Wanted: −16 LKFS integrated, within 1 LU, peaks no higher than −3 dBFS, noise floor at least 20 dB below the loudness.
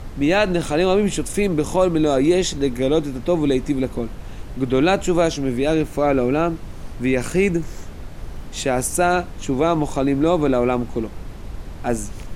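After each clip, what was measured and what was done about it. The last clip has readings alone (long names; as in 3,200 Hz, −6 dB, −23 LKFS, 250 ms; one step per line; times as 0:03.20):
background noise floor −35 dBFS; target noise floor −40 dBFS; integrated loudness −20.0 LKFS; sample peak −5.0 dBFS; target loudness −16.0 LKFS
→ noise reduction from a noise print 6 dB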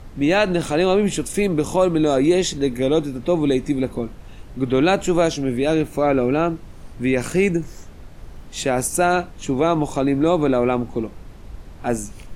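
background noise floor −40 dBFS; integrated loudness −20.0 LKFS; sample peak −5.5 dBFS; target loudness −16.0 LKFS
→ level +4 dB
brickwall limiter −3 dBFS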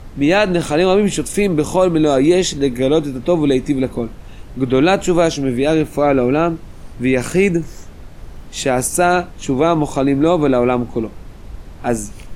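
integrated loudness −16.0 LKFS; sample peak −3.0 dBFS; background noise floor −36 dBFS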